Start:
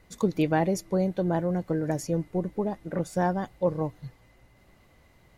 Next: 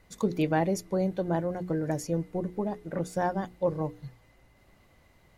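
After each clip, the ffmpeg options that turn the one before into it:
-af "bandreject=f=60:t=h:w=6,bandreject=f=120:t=h:w=6,bandreject=f=180:t=h:w=6,bandreject=f=240:t=h:w=6,bandreject=f=300:t=h:w=6,bandreject=f=360:t=h:w=6,bandreject=f=420:t=h:w=6,bandreject=f=480:t=h:w=6,volume=-1.5dB"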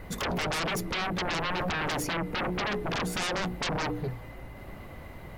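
-af "equalizer=f=6.3k:w=0.62:g=-12.5,acompressor=threshold=-29dB:ratio=6,aeval=exprs='0.0708*sin(PI/2*7.94*val(0)/0.0708)':c=same,volume=-4dB"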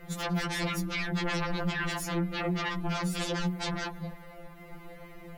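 -af "afftfilt=real='re*2.83*eq(mod(b,8),0)':imag='im*2.83*eq(mod(b,8),0)':win_size=2048:overlap=0.75"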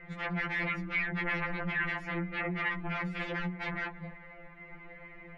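-af "lowpass=f=2.1k:t=q:w=3.6,volume=-5.5dB"

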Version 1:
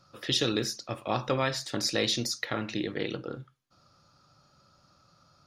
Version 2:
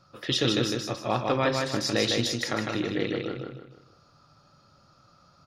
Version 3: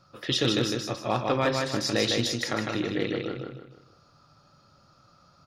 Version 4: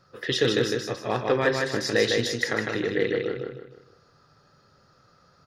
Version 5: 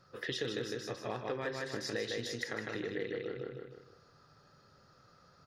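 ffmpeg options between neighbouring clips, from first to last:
-filter_complex "[0:a]highshelf=f=5.1k:g=-7,asplit=2[a][b];[b]aecho=0:1:155|310|465|620|775:0.668|0.247|0.0915|0.0339|0.0125[c];[a][c]amix=inputs=2:normalize=0,volume=2.5dB"
-af "asoftclip=type=hard:threshold=-13.5dB"
-af "superequalizer=7b=2.51:11b=2.51,volume=-1dB"
-af "acompressor=threshold=-34dB:ratio=3,volume=-3.5dB"

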